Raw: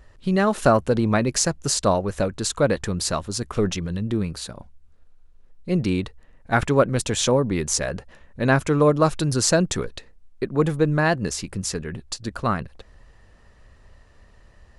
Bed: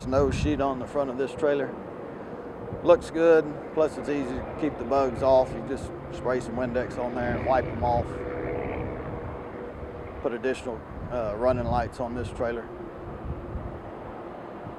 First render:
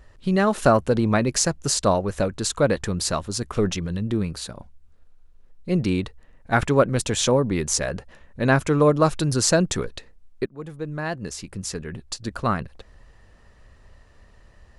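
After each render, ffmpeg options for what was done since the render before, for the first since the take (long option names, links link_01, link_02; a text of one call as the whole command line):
ffmpeg -i in.wav -filter_complex "[0:a]asplit=2[link_01][link_02];[link_01]atrim=end=10.46,asetpts=PTS-STARTPTS,afade=type=out:start_time=10.456:duration=0.004:curve=hsin:silence=0.0841395[link_03];[link_02]atrim=start=10.46,asetpts=PTS-STARTPTS,afade=type=in:duration=1.87:silence=0.0841395[link_04];[link_03][link_04]concat=n=2:v=0:a=1" out.wav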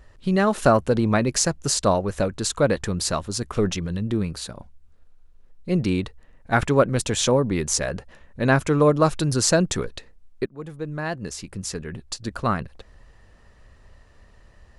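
ffmpeg -i in.wav -af anull out.wav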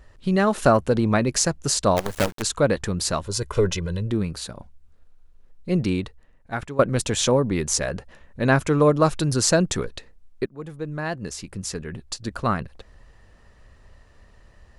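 ffmpeg -i in.wav -filter_complex "[0:a]asplit=3[link_01][link_02][link_03];[link_01]afade=type=out:start_time=1.96:duration=0.02[link_04];[link_02]acrusher=bits=4:dc=4:mix=0:aa=0.000001,afade=type=in:start_time=1.96:duration=0.02,afade=type=out:start_time=2.41:duration=0.02[link_05];[link_03]afade=type=in:start_time=2.41:duration=0.02[link_06];[link_04][link_05][link_06]amix=inputs=3:normalize=0,asettb=1/sr,asplit=3[link_07][link_08][link_09];[link_07]atrim=end=3.254[link_10];[link_08]atrim=start=3.25:end=4.11,asetpts=PTS-STARTPTS,afade=type=in:duration=0.004:curve=qsin,afade=type=out:start_time=0.856:duration=0.004:curve=qsin,aecho=1:1:2:0.67,atrim=end_sample=37926[link_11];[link_09]atrim=start=4.106[link_12];[link_10][link_11]acrossfade=duration=0.004:curve1=hsin:curve2=qsin[link_13];[link_13][link_12]acrossfade=duration=0.004:curve1=qsin:curve2=hsin,asplit=2[link_14][link_15];[link_14]atrim=end=6.79,asetpts=PTS-STARTPTS,afade=type=out:start_time=5.81:duration=0.98:silence=0.158489[link_16];[link_15]atrim=start=6.79,asetpts=PTS-STARTPTS,afade=type=in:duration=0.004:curve=hsin:silence=0.158489[link_17];[link_16][link_17]concat=n=2:v=0:a=1" out.wav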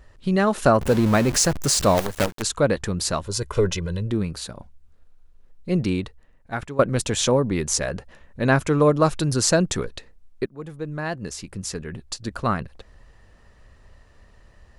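ffmpeg -i in.wav -filter_complex "[0:a]asettb=1/sr,asplit=3[link_01][link_02][link_03];[link_01]atrim=end=0.814[link_04];[link_02]atrim=start=0.81:end=2.06,asetpts=PTS-STARTPTS,afade=type=in:duration=0.004:curve=qsin,afade=type=out:start_time=1.246:duration=0.004:curve=qsin,aeval=exprs='val(0)+0.5*0.0631*sgn(val(0))':channel_layout=same[link_05];[link_03]atrim=start=2.056[link_06];[link_04][link_05]acrossfade=duration=0.004:curve1=hsin:curve2=qsin[link_07];[link_07][link_06]acrossfade=duration=0.004:curve1=qsin:curve2=hsin" out.wav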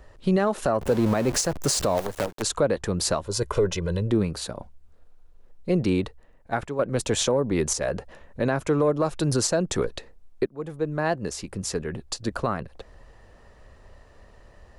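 ffmpeg -i in.wav -filter_complex "[0:a]acrossover=split=370|900[link_01][link_02][link_03];[link_02]acontrast=90[link_04];[link_01][link_04][link_03]amix=inputs=3:normalize=0,alimiter=limit=-12.5dB:level=0:latency=1:release=317" out.wav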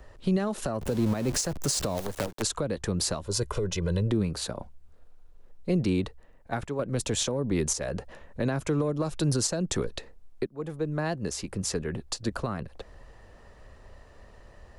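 ffmpeg -i in.wav -filter_complex "[0:a]acrossover=split=290|3000[link_01][link_02][link_03];[link_02]acompressor=threshold=-31dB:ratio=3[link_04];[link_01][link_04][link_03]amix=inputs=3:normalize=0,alimiter=limit=-16.5dB:level=0:latency=1:release=234" out.wav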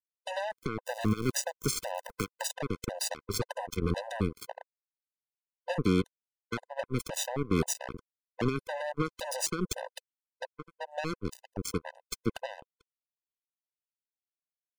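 ffmpeg -i in.wav -af "acrusher=bits=3:mix=0:aa=0.5,afftfilt=real='re*gt(sin(2*PI*1.9*pts/sr)*(1-2*mod(floor(b*sr/1024/510),2)),0)':imag='im*gt(sin(2*PI*1.9*pts/sr)*(1-2*mod(floor(b*sr/1024/510),2)),0)':win_size=1024:overlap=0.75" out.wav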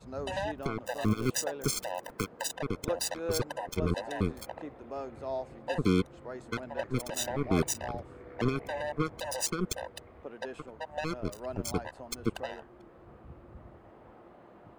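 ffmpeg -i in.wav -i bed.wav -filter_complex "[1:a]volume=-15.5dB[link_01];[0:a][link_01]amix=inputs=2:normalize=0" out.wav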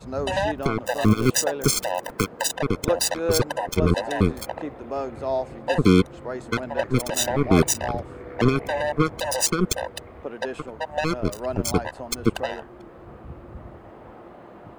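ffmpeg -i in.wav -af "volume=10dB" out.wav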